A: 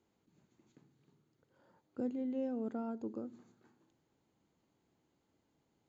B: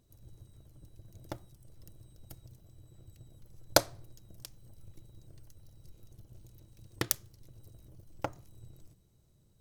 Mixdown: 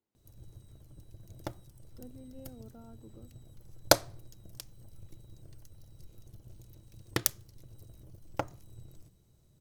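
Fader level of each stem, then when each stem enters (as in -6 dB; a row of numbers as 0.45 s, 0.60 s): -13.0 dB, +2.0 dB; 0.00 s, 0.15 s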